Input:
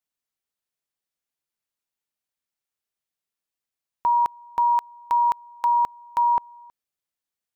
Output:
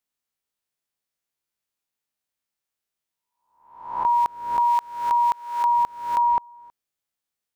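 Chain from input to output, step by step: reverse spectral sustain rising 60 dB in 0.67 s

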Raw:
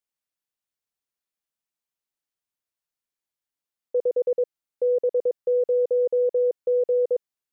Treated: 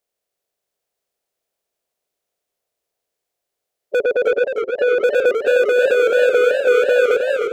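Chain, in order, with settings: coarse spectral quantiser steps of 30 dB; high-order bell 530 Hz +11.5 dB 1.1 oct; peak limiter -11 dBFS, peak gain reduction 5.5 dB; hard clipper -21.5 dBFS, distortion -9 dB; 3.99–5.03 s: distance through air 160 m; modulated delay 311 ms, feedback 70%, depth 142 cents, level -6 dB; trim +7.5 dB

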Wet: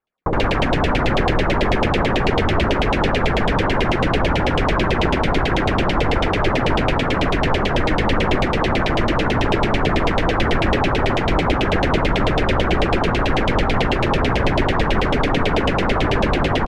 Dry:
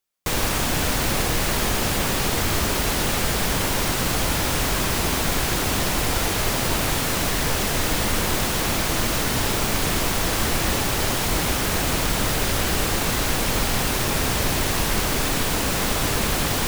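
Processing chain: LFO low-pass saw down 9.1 Hz 300–3300 Hz; bands offset in time lows, highs 70 ms, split 1.7 kHz; trim +5 dB

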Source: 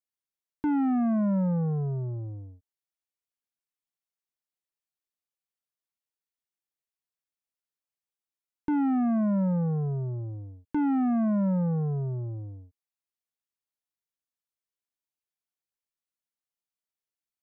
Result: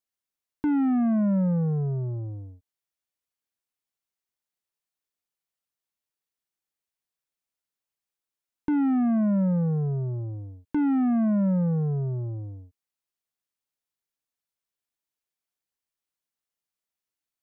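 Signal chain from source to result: dynamic bell 920 Hz, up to -6 dB, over -47 dBFS, Q 1.9; trim +2.5 dB

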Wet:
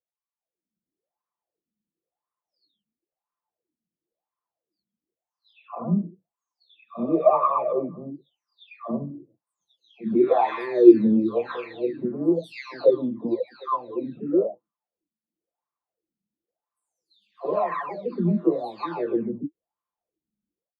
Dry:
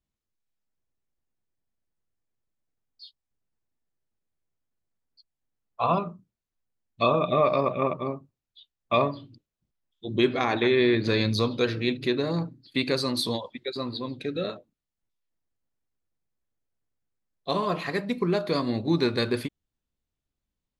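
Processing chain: delay that grows with frequency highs early, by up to 734 ms; level rider gain up to 12 dB; wah-wah 0.97 Hz 210–1100 Hz, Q 9; trim +7 dB

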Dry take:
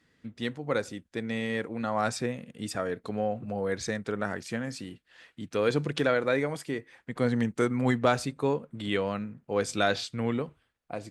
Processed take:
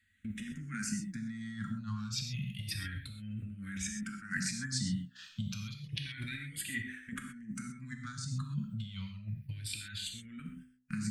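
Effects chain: gate -55 dBFS, range -16 dB; reverb removal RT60 0.59 s; elliptic band-stop 210–1500 Hz, stop band 60 dB; treble shelf 5.6 kHz +4 dB; de-hum 63.2 Hz, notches 12; harmonic-percussive split percussive -11 dB; bass shelf 96 Hz +7 dB; compressor with a negative ratio -47 dBFS, ratio -1; gated-style reverb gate 150 ms flat, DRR 4 dB; barber-pole phaser -0.3 Hz; trim +8.5 dB

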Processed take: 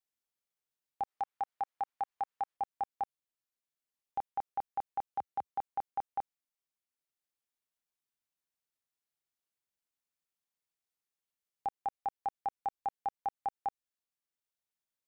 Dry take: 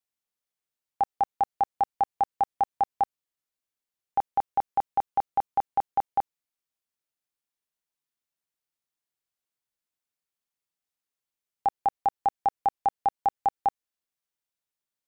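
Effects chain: 1.07–2.57 s: peaking EQ 1.4 kHz +10 dB 2.9 oct; 5.08–5.58 s: high-pass 74 Hz 24 dB/octave; transient shaper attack +11 dB, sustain -2 dB; peak limiter -23.5 dBFS, peak gain reduction 25.5 dB; trim -4 dB

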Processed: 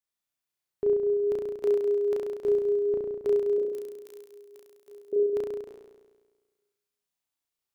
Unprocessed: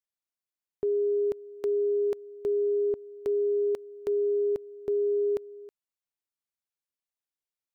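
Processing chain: 3.58–5.13 s: differentiator; on a send: flutter echo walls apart 5.8 m, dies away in 1.4 s

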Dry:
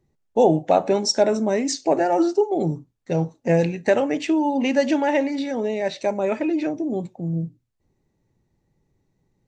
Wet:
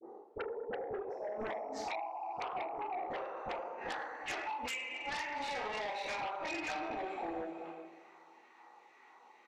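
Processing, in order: delay 368 ms -20 dB; LFO notch saw down 2.1 Hz 470–3300 Hz; inverted gate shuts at -13 dBFS, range -42 dB; high-pass 330 Hz 24 dB/octave; high-order bell 1 kHz +12.5 dB 1.1 oct; two-slope reverb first 0.61 s, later 1.8 s, DRR -7.5 dB; band-pass sweep 440 Hz -> 2.3 kHz, 0.70–4.67 s; treble shelf 2.3 kHz -10 dB; compression 8:1, threshold -56 dBFS, peak gain reduction 41.5 dB; sine folder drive 16 dB, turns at -37.5 dBFS; phase dispersion highs, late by 41 ms, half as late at 710 Hz; trim +2.5 dB

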